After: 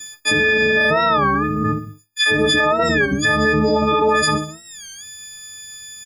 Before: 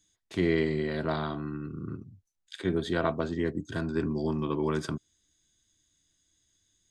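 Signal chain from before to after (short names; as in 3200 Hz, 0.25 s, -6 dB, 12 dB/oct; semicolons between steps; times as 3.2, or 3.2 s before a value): frequency quantiser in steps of 6 st; compressor, threshold -29 dBFS, peak gain reduction 10 dB; bell 1800 Hz +10.5 dB 1.1 oct; pitch shift -2.5 st; upward compressor, threshold -43 dBFS; varispeed +14%; on a send: feedback echo 66 ms, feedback 45%, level -14 dB; on the sum: dynamic EQ 600 Hz, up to +7 dB, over -52 dBFS, Q 1.7; de-hum 154.8 Hz, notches 32; expander -51 dBFS; maximiser +24.5 dB; record warp 33 1/3 rpm, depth 160 cents; gain -7 dB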